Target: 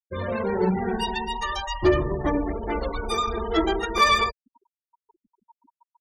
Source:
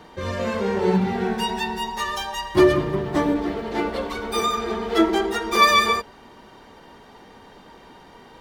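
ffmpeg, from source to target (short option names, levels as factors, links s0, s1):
-af "afftfilt=real='re*gte(hypot(re,im),0.0398)':imag='im*gte(hypot(re,im),0.0398)':win_size=1024:overlap=0.75,asubboost=boost=6.5:cutoff=72,atempo=1.4,acontrast=37,volume=0.473"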